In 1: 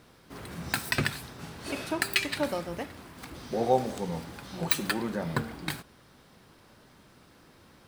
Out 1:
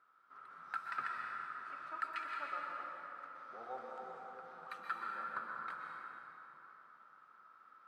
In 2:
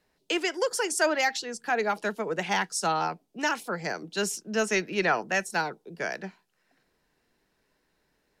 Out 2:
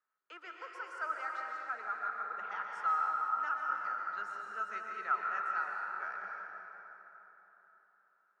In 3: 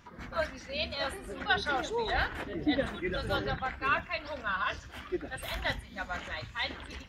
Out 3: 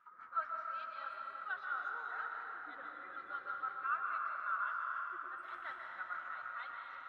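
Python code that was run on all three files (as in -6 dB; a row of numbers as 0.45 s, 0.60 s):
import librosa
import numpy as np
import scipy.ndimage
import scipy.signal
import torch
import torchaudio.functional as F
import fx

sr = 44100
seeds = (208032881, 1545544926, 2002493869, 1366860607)

y = fx.rider(x, sr, range_db=5, speed_s=2.0)
y = fx.bandpass_q(y, sr, hz=1300.0, q=14.0)
y = fx.rev_plate(y, sr, seeds[0], rt60_s=3.8, hf_ratio=0.6, predelay_ms=110, drr_db=-1.0)
y = y * 10.0 ** (1.5 / 20.0)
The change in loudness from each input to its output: -13.0 LU, -8.5 LU, -8.0 LU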